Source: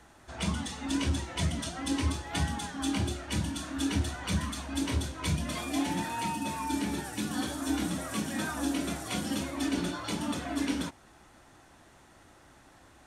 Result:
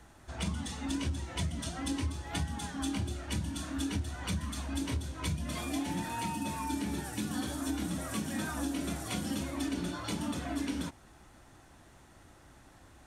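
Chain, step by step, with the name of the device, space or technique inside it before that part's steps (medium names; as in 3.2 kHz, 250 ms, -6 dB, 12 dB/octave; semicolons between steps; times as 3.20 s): ASMR close-microphone chain (bass shelf 180 Hz +7.5 dB; compression, threshold -28 dBFS, peak gain reduction 10 dB; treble shelf 9.6 kHz +4.5 dB); trim -2.5 dB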